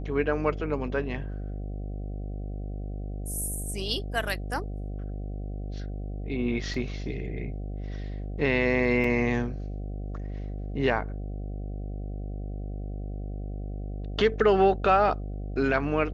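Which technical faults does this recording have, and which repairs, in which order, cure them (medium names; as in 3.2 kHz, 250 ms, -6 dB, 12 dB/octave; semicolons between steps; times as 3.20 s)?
buzz 50 Hz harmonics 15 -34 dBFS
6.74 s: dropout 2.9 ms
9.04 s: dropout 3.9 ms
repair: de-hum 50 Hz, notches 15; interpolate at 6.74 s, 2.9 ms; interpolate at 9.04 s, 3.9 ms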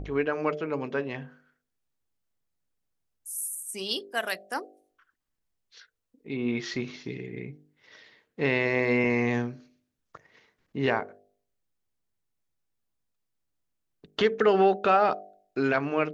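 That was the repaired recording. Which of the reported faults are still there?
nothing left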